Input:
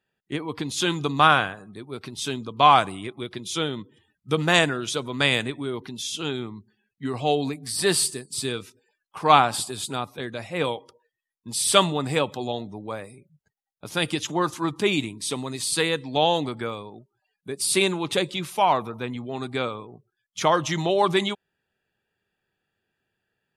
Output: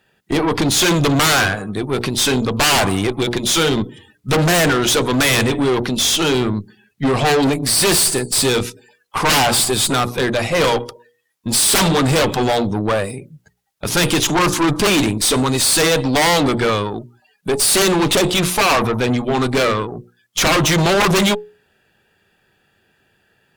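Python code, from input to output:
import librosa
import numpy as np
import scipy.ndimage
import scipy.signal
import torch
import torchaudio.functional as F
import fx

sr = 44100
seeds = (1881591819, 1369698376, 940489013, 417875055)

y = fx.hum_notches(x, sr, base_hz=60, count=8)
y = fx.fold_sine(y, sr, drive_db=19, ceiling_db=-1.0)
y = fx.tube_stage(y, sr, drive_db=11.0, bias=0.6)
y = y * 10.0 ** (-1.5 / 20.0)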